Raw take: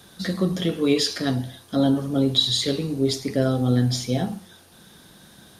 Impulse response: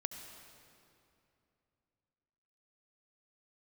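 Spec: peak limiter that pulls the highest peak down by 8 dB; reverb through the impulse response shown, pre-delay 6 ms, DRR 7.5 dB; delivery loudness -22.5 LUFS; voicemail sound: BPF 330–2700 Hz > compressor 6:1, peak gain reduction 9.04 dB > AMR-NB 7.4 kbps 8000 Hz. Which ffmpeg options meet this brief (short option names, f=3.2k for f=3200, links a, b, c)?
-filter_complex "[0:a]alimiter=limit=-16dB:level=0:latency=1,asplit=2[a][b];[1:a]atrim=start_sample=2205,adelay=6[c];[b][c]afir=irnorm=-1:irlink=0,volume=-7dB[d];[a][d]amix=inputs=2:normalize=0,highpass=330,lowpass=2.7k,acompressor=threshold=-32dB:ratio=6,volume=15.5dB" -ar 8000 -c:a libopencore_amrnb -b:a 7400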